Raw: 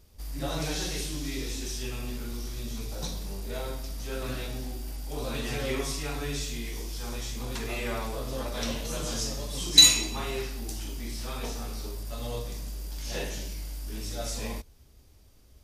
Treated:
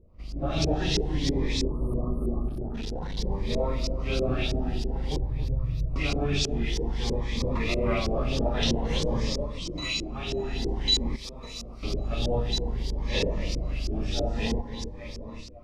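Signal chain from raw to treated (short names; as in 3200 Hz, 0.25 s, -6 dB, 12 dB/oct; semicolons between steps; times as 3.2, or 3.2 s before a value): octaver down 1 oct, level -4 dB; 5.17–5.96 inverse Chebyshev band-stop 270–7700 Hz, stop band 40 dB; echo with dull and thin repeats by turns 0.275 s, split 1600 Hz, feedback 79%, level -12.5 dB; on a send at -15 dB: reverb RT60 1.2 s, pre-delay 3 ms; 1.63–2.75 on the sum: spectral delete 1300–8700 Hz; in parallel at +0.5 dB: compressor, threshold -40 dBFS, peak gain reduction 27 dB; 11.16–11.83 on the sum: pre-emphasis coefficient 0.8; AGC gain up to 10 dB; bell 1500 Hz -12 dB 0.26 oct; 2.48–3.19 hard clip -24 dBFS, distortion -19 dB; LFO low-pass saw up 3.1 Hz 380–5600 Hz; cascading phaser rising 0.52 Hz; gain -6 dB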